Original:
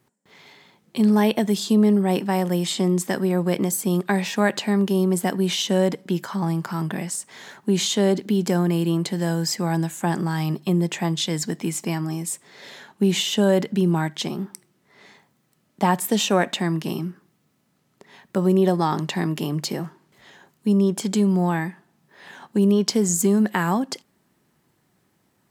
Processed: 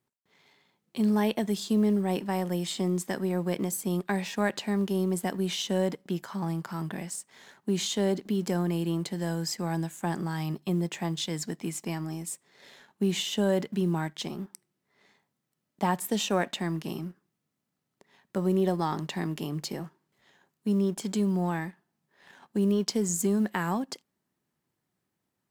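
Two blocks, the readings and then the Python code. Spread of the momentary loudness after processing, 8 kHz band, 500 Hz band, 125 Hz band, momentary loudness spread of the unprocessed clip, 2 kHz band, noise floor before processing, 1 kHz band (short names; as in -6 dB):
10 LU, -7.5 dB, -7.5 dB, -7.5 dB, 10 LU, -7.5 dB, -67 dBFS, -7.5 dB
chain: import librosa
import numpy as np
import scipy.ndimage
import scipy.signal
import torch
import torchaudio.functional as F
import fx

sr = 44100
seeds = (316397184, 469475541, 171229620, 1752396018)

y = fx.law_mismatch(x, sr, coded='A')
y = y * 10.0 ** (-7.0 / 20.0)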